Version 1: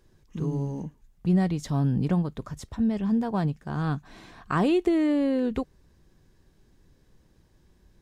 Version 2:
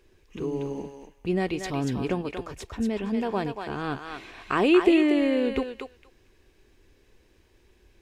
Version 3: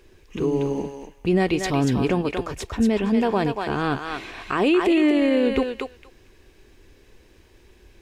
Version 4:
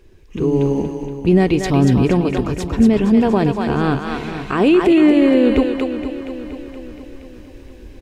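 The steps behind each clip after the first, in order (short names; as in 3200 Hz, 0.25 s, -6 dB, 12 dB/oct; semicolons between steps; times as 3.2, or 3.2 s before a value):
fifteen-band EQ 160 Hz -12 dB, 400 Hz +7 dB, 2500 Hz +11 dB; on a send: thinning echo 0.235 s, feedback 15%, high-pass 840 Hz, level -3 dB
limiter -19 dBFS, peak gain reduction 10.5 dB; gain +7.5 dB
low shelf 380 Hz +8.5 dB; AGC gain up to 7.5 dB; on a send: feedback echo 0.472 s, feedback 52%, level -11.5 dB; on the sum: gain -2.5 dB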